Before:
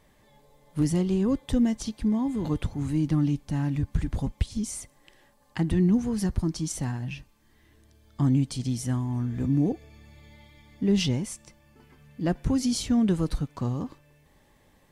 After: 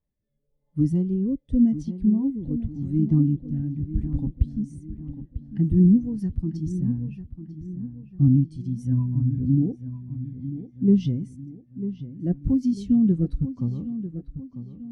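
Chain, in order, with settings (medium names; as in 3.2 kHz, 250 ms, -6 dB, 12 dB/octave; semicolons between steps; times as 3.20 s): 8.91–9.39 s: rippled EQ curve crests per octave 1.6, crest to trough 10 dB; rotary cabinet horn 0.9 Hz, later 6.3 Hz, at 8.03 s; bass shelf 360 Hz +4.5 dB; band-stop 7.3 kHz, Q 27; filtered feedback delay 946 ms, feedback 59%, low-pass 3.7 kHz, level -8 dB; spectral contrast expander 1.5:1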